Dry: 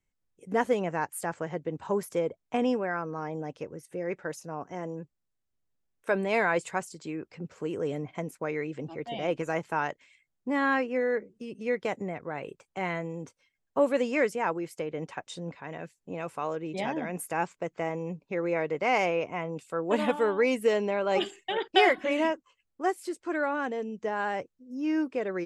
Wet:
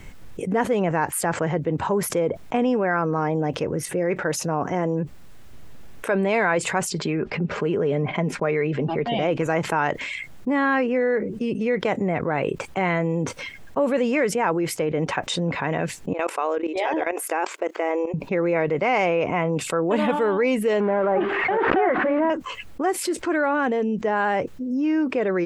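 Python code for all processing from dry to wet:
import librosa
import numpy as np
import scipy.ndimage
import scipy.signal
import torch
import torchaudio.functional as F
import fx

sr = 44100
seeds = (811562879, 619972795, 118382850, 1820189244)

y = fx.chain(x, sr, fx.lowpass(hz=4400.0, slope=12),
    fx.comb(ms=4.9, depth=0.4), at=(6.9, 9.13))
y = fx.chain(y, sr, fx.brickwall_highpass(low_hz=300.0),
    fx.level_steps(step_db=18), at=(16.13, 18.14))
y = fx.chain(y, sr, fx.crossing_spikes(level_db=-16.0),
    fx.lowpass(hz=1600.0, slope=24),
    fx.pre_swell(db_per_s=61.0), at=(20.8, 22.3))
y = fx.bass_treble(y, sr, bass_db=2, treble_db=-8)
y = fx.env_flatten(y, sr, amount_pct=70)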